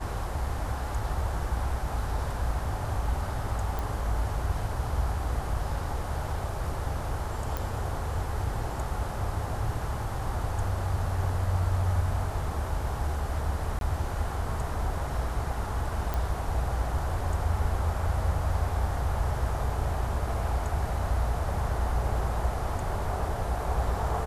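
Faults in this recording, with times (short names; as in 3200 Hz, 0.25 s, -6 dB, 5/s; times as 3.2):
3.79 pop
7.57 pop
13.79–13.81 gap 22 ms
16.14 pop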